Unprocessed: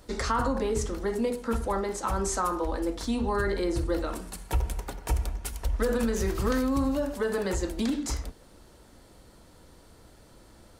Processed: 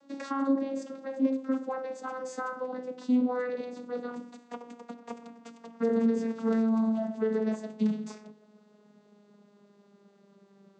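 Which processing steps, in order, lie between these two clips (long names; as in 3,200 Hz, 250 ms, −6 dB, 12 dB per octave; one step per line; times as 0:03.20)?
vocoder with a gliding carrier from C#4, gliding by −6 semitones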